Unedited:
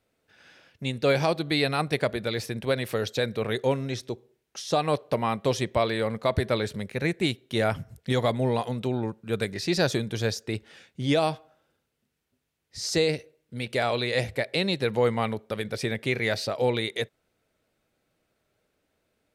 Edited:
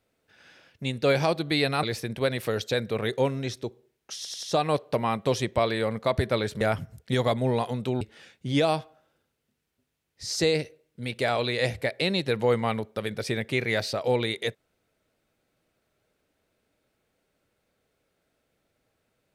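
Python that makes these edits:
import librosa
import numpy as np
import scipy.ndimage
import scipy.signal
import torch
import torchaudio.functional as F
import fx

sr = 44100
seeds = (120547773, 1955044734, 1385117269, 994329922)

y = fx.edit(x, sr, fx.cut(start_s=1.83, length_s=0.46),
    fx.stutter(start_s=4.62, slice_s=0.09, count=4),
    fx.cut(start_s=6.8, length_s=0.79),
    fx.cut(start_s=8.99, length_s=1.56), tone=tone)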